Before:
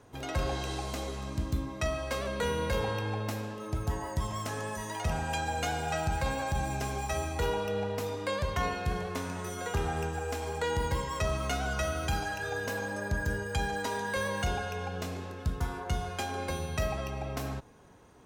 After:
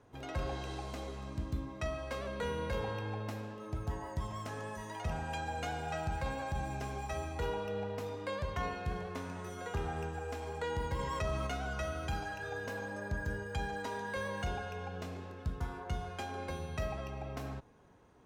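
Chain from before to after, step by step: treble shelf 4.9 kHz -9 dB; 10.99–11.47 s: level flattener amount 50%; trim -5.5 dB

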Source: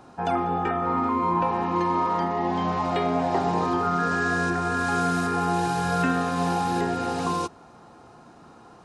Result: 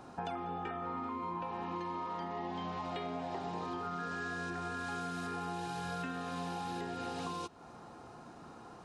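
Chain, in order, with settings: dynamic bell 3.3 kHz, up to +6 dB, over -46 dBFS, Q 1.3; compression 6:1, threshold -35 dBFS, peak gain reduction 15 dB; trim -2.5 dB

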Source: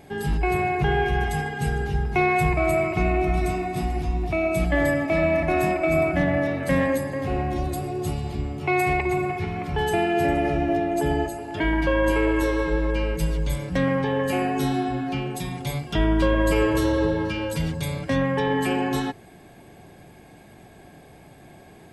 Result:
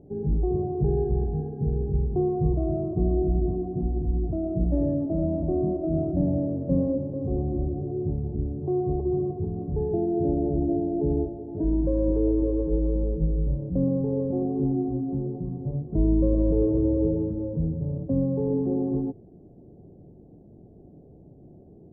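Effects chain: inverse Chebyshev low-pass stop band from 2.9 kHz, stop band 80 dB

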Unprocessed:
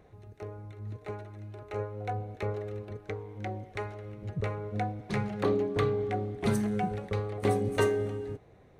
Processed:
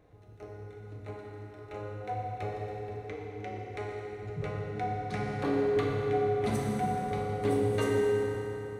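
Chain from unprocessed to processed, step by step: FDN reverb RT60 3.8 s, high-frequency decay 0.7×, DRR -3.5 dB; trim -5.5 dB

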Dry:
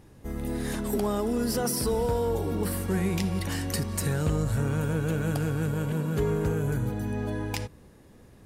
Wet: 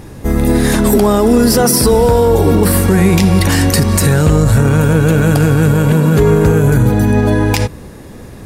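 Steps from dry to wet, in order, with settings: band-stop 3 kHz, Q 26; loudness maximiser +21.5 dB; trim -1 dB

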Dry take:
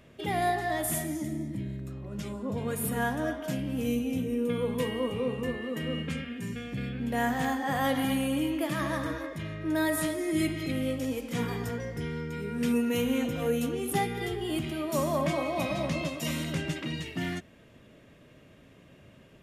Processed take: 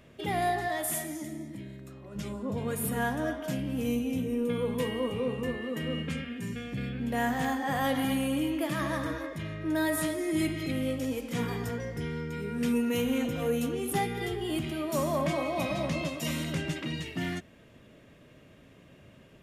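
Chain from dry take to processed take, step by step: 0.68–2.16 s: bass shelf 230 Hz -12 dB; saturation -17.5 dBFS, distortion -26 dB

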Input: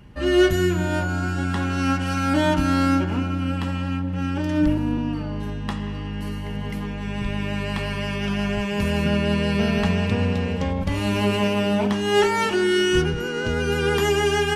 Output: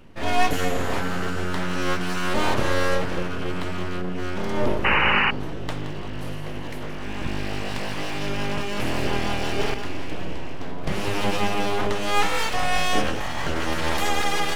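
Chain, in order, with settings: on a send: two-band feedback delay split 360 Hz, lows 456 ms, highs 171 ms, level -11.5 dB; on the sum: full-wave rectifier; 4.84–5.31 s: painted sound noise 770–3000 Hz -20 dBFS; 9.74–10.84 s: feedback comb 62 Hz, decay 0.68 s, harmonics all, mix 70%

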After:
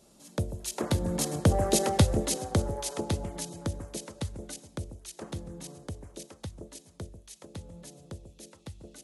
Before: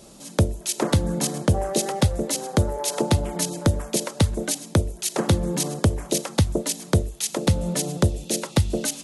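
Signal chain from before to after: Doppler pass-by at 1.81 s, 7 m/s, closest 3.5 m; echo whose repeats swap between lows and highs 140 ms, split 840 Hz, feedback 52%, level -10 dB; trim -1.5 dB

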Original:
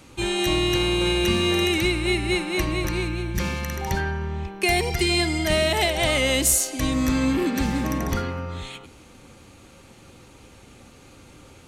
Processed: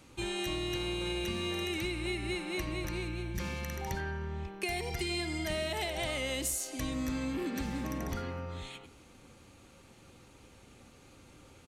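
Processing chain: compression 3:1, threshold -24 dBFS, peak gain reduction 7 dB; speakerphone echo 90 ms, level -14 dB; trim -8.5 dB

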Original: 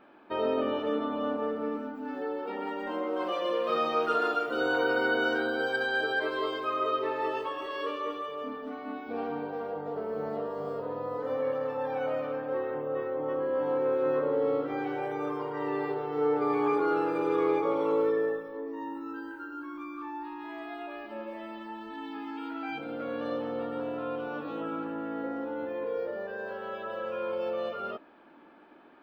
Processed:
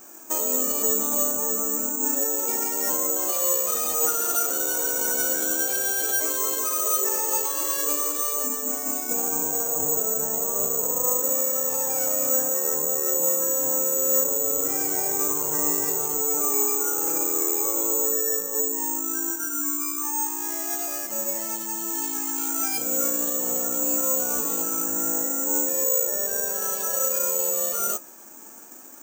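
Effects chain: median filter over 9 samples; treble shelf 4.5 kHz +6.5 dB; peak limiter -28 dBFS, peak gain reduction 11.5 dB; flange 0.17 Hz, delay 2.6 ms, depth 6.1 ms, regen +69%; careless resampling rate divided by 6×, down none, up zero stuff; trim +8 dB

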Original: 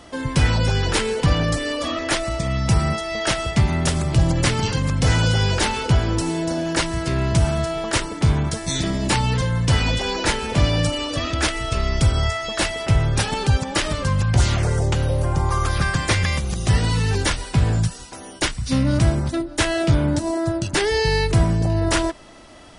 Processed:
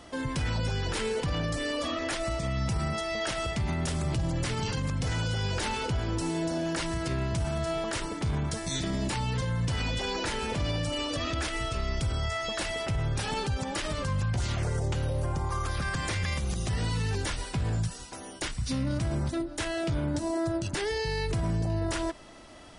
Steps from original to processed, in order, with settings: peak limiter -17 dBFS, peak gain reduction 10.5 dB; trim -5 dB

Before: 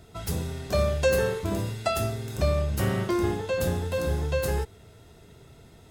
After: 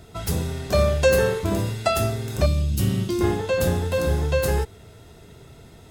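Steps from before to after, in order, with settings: 2.46–3.21 s: high-order bell 950 Hz -14 dB 2.6 oct; trim +5 dB

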